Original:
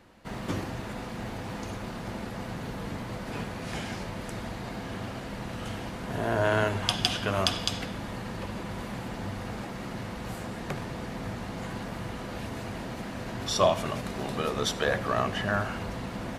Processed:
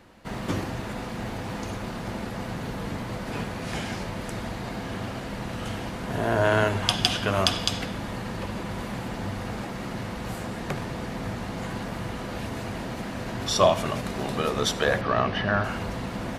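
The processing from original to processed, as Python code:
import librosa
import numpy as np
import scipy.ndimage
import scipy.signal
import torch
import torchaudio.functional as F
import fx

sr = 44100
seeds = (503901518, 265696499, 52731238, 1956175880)

y = fx.savgol(x, sr, points=15, at=(15.01, 15.64))
y = y * librosa.db_to_amplitude(3.5)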